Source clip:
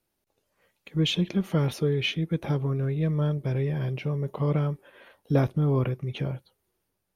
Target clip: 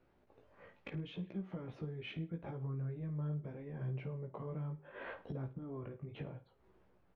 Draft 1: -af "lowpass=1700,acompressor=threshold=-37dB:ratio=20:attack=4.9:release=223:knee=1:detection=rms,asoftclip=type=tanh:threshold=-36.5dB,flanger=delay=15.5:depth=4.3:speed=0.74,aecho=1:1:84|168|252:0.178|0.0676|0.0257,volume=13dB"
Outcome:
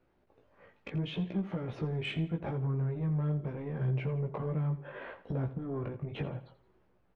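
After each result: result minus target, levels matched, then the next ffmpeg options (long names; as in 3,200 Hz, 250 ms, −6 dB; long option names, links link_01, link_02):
echo 31 ms late; downward compressor: peak gain reduction −10.5 dB
-af "lowpass=1700,acompressor=threshold=-37dB:ratio=20:attack=4.9:release=223:knee=1:detection=rms,asoftclip=type=tanh:threshold=-36.5dB,flanger=delay=15.5:depth=4.3:speed=0.74,aecho=1:1:53|106|159:0.178|0.0676|0.0257,volume=13dB"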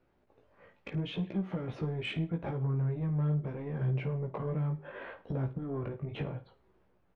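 downward compressor: peak gain reduction −10.5 dB
-af "lowpass=1700,acompressor=threshold=-48dB:ratio=20:attack=4.9:release=223:knee=1:detection=rms,asoftclip=type=tanh:threshold=-36.5dB,flanger=delay=15.5:depth=4.3:speed=0.74,aecho=1:1:53|106|159:0.178|0.0676|0.0257,volume=13dB"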